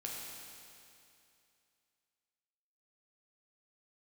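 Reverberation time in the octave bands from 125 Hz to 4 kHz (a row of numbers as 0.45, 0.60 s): 2.6, 2.6, 2.6, 2.6, 2.6, 2.6 s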